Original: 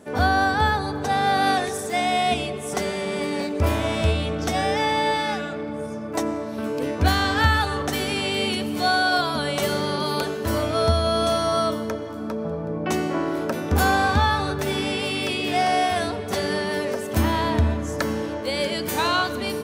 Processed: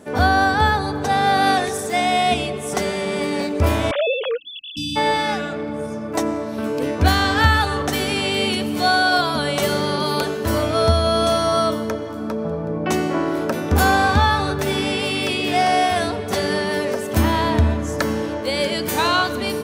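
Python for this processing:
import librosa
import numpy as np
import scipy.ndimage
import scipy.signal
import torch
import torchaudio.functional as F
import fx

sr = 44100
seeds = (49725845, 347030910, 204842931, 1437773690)

y = fx.sine_speech(x, sr, at=(3.91, 4.77))
y = fx.spec_erase(y, sr, start_s=4.37, length_s=0.59, low_hz=310.0, high_hz=2600.0)
y = y * librosa.db_to_amplitude(3.5)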